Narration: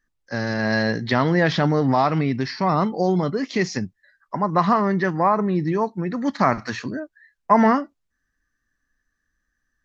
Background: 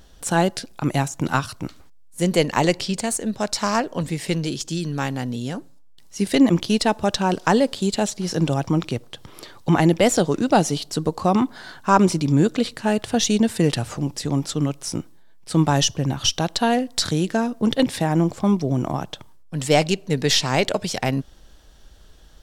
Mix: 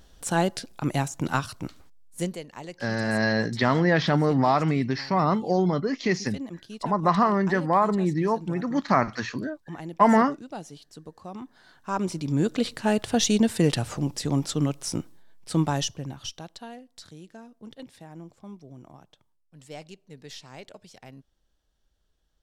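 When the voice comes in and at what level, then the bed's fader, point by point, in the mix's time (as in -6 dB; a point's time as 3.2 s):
2.50 s, -2.5 dB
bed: 2.2 s -4.5 dB
2.41 s -21 dB
11.33 s -21 dB
12.71 s -2.5 dB
15.41 s -2.5 dB
16.81 s -24 dB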